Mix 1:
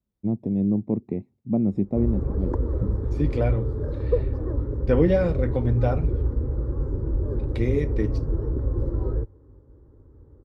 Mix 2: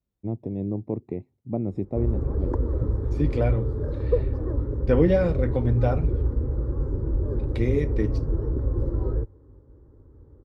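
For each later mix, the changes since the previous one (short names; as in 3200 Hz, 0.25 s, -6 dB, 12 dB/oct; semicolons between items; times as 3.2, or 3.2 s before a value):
first voice: add bell 210 Hz -10 dB 0.56 oct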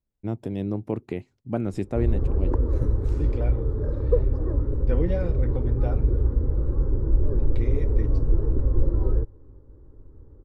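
first voice: remove running mean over 29 samples; second voice -8.5 dB; master: remove HPF 50 Hz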